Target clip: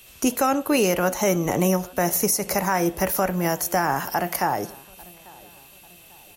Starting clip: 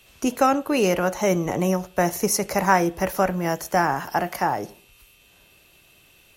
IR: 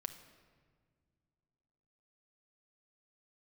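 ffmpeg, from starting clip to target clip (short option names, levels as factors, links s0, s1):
-filter_complex "[0:a]highshelf=f=7600:g=11.5,alimiter=limit=0.237:level=0:latency=1:release=168,asplit=2[s0][s1];[s1]adelay=844,lowpass=f=2000:p=1,volume=0.0668,asplit=2[s2][s3];[s3]adelay=844,lowpass=f=2000:p=1,volume=0.47,asplit=2[s4][s5];[s5]adelay=844,lowpass=f=2000:p=1,volume=0.47[s6];[s0][s2][s4][s6]amix=inputs=4:normalize=0,volume=1.26"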